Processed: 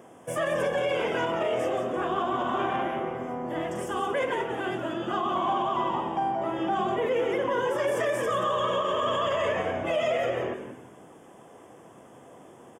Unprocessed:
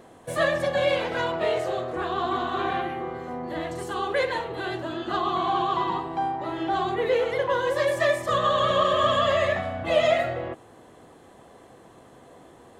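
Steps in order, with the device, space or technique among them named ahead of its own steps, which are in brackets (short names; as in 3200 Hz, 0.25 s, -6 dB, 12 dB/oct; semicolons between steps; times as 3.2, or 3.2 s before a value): bell 1800 Hz -3 dB 0.43 oct; frequency-shifting echo 0.177 s, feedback 33%, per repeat -120 Hz, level -8 dB; PA system with an anti-feedback notch (HPF 120 Hz 12 dB/oct; Butterworth band-stop 4100 Hz, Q 2.6; limiter -18.5 dBFS, peak gain reduction 9.5 dB)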